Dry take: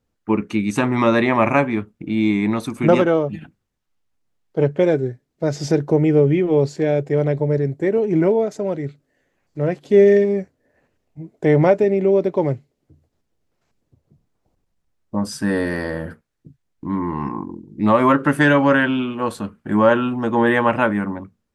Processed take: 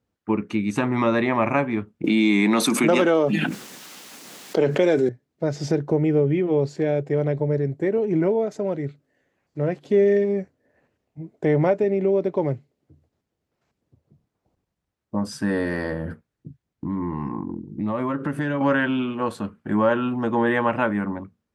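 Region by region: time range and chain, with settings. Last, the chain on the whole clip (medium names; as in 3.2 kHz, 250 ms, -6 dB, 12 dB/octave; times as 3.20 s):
2.04–5.09 s: high-pass 190 Hz 24 dB/octave + treble shelf 2.7 kHz +12 dB + level flattener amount 70%
15.92–18.61 s: bass shelf 370 Hz +7 dB + compression 3:1, threshold -23 dBFS
whole clip: high-pass 61 Hz; treble shelf 5.6 kHz -6.5 dB; compression 1.5:1, threshold -20 dBFS; trim -1.5 dB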